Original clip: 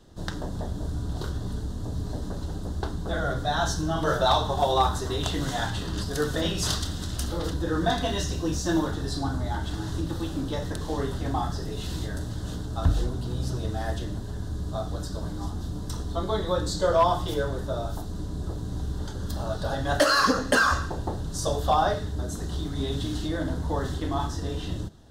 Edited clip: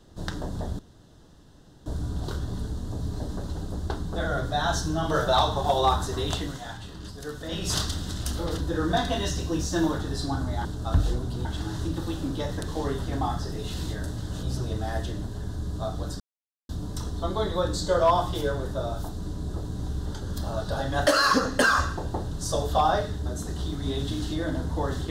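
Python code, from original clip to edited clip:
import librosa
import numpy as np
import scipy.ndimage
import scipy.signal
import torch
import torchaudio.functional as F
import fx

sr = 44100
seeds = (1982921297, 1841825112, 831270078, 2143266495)

y = fx.edit(x, sr, fx.insert_room_tone(at_s=0.79, length_s=1.07),
    fx.fade_down_up(start_s=5.25, length_s=1.39, db=-9.5, fade_s=0.26),
    fx.move(start_s=12.56, length_s=0.8, to_s=9.58),
    fx.silence(start_s=15.13, length_s=0.49), tone=tone)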